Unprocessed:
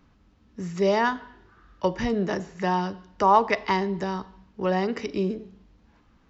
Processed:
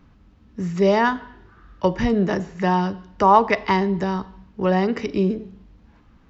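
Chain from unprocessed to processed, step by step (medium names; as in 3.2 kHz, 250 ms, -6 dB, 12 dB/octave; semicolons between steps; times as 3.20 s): tone controls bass +4 dB, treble -4 dB; trim +4 dB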